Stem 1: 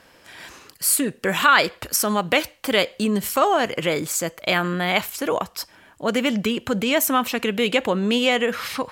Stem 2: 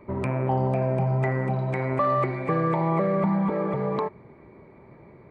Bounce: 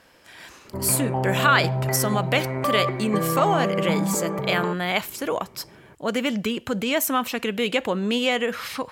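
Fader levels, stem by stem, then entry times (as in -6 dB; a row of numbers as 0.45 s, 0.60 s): -3.0 dB, -1.0 dB; 0.00 s, 0.65 s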